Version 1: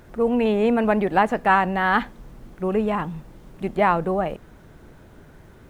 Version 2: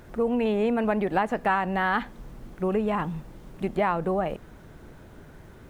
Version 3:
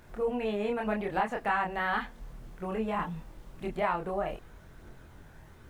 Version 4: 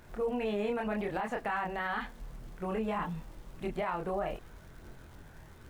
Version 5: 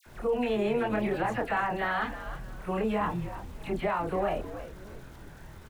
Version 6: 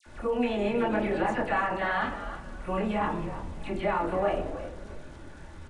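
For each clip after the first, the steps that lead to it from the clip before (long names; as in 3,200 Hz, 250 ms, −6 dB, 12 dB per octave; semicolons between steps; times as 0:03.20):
downward compressor 2.5 to 1, threshold −23 dBFS, peak gain reduction 7.5 dB
parametric band 260 Hz −5.5 dB 2.4 octaves; multi-voice chorus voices 2, 0.41 Hz, delay 26 ms, depth 3.3 ms
brickwall limiter −24.5 dBFS, peak gain reduction 9.5 dB; surface crackle 140 per second −49 dBFS
all-pass dispersion lows, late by 64 ms, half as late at 1,800 Hz; echo with shifted repeats 314 ms, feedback 32%, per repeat −94 Hz, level −12 dB; level +4.5 dB
on a send at −3.5 dB: convolution reverb RT60 1.3 s, pre-delay 3 ms; on the sum: downsampling to 22,050 Hz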